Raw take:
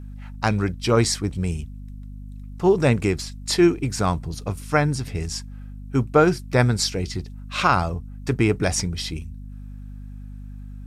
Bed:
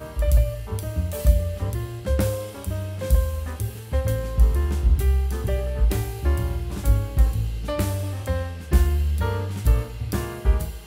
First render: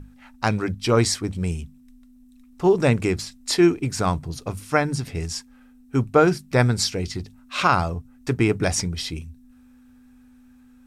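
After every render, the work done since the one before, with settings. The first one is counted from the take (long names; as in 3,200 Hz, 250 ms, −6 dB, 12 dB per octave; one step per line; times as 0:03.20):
mains-hum notches 50/100/150/200 Hz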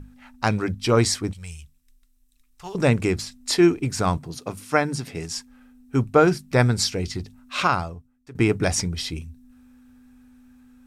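0:01.33–0:02.75: guitar amp tone stack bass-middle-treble 10-0-10
0:04.17–0:05.37: high-pass filter 150 Hz
0:07.58–0:08.35: fade out quadratic, to −19.5 dB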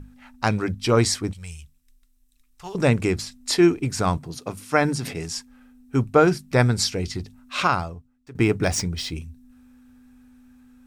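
0:04.67–0:05.31: level that may fall only so fast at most 57 dB per second
0:07.79–0:09.16: running median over 3 samples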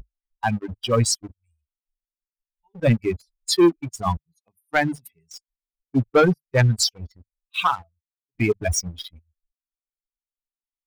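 spectral dynamics exaggerated over time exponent 3
leveller curve on the samples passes 2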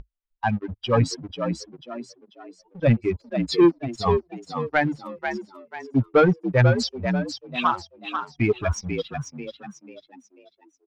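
high-frequency loss of the air 170 metres
echo with shifted repeats 491 ms, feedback 37%, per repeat +61 Hz, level −7 dB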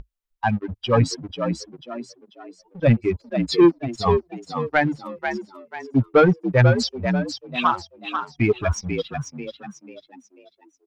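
level +2 dB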